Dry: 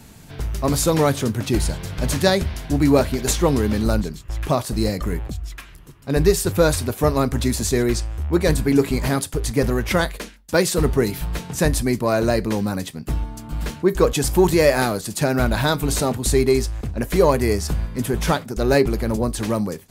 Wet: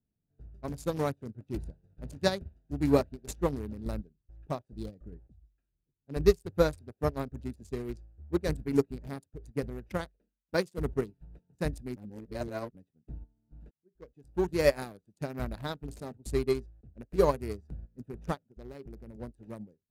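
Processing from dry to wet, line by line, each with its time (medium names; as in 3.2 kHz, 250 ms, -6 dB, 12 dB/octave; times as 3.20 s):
11.96–12.75 s: reverse
13.71–14.63 s: fade in
18.34–19.16 s: compression 8:1, threshold -17 dBFS
whole clip: local Wiener filter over 41 samples; upward expansion 2.5:1, over -34 dBFS; trim -4 dB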